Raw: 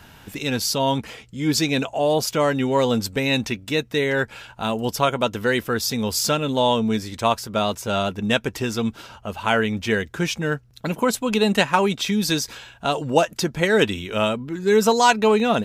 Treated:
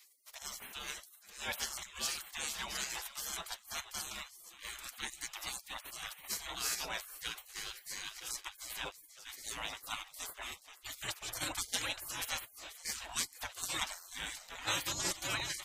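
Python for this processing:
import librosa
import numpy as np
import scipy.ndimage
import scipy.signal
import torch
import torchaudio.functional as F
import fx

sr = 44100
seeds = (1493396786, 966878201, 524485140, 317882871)

y = fx.echo_feedback(x, sr, ms=478, feedback_pct=56, wet_db=-16.0)
y = fx.harmonic_tremolo(y, sr, hz=2.6, depth_pct=70, crossover_hz=750.0)
y = fx.spec_gate(y, sr, threshold_db=-30, keep='weak')
y = y * librosa.db_to_amplitude(5.5)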